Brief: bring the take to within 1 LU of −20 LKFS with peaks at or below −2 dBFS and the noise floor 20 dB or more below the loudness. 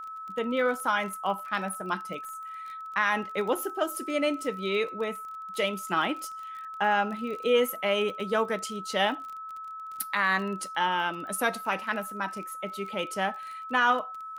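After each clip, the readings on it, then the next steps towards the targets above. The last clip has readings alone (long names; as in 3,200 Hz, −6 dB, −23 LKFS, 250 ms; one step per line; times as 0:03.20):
crackle rate 31 per second; interfering tone 1,300 Hz; level of the tone −37 dBFS; integrated loudness −29.5 LKFS; sample peak −12.0 dBFS; target loudness −20.0 LKFS
→ click removal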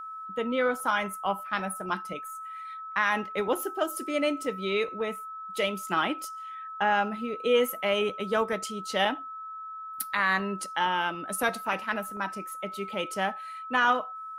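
crackle rate 0 per second; interfering tone 1,300 Hz; level of the tone −37 dBFS
→ notch filter 1,300 Hz, Q 30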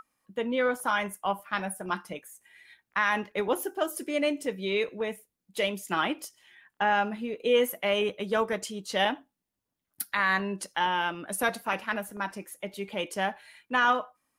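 interfering tone none found; integrated loudness −29.0 LKFS; sample peak −12.5 dBFS; target loudness −20.0 LKFS
→ level +9 dB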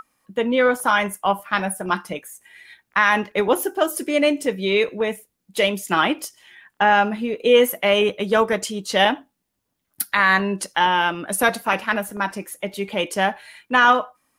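integrated loudness −20.0 LKFS; sample peak −3.5 dBFS; background noise floor −76 dBFS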